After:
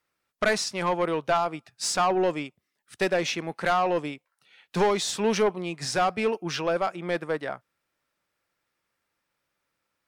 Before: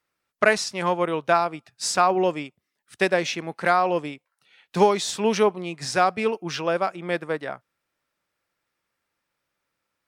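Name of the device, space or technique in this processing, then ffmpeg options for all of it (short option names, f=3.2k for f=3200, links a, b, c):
saturation between pre-emphasis and de-emphasis: -af "highshelf=f=7.1k:g=8.5,asoftclip=type=tanh:threshold=-16.5dB,highshelf=f=7.1k:g=-8.5"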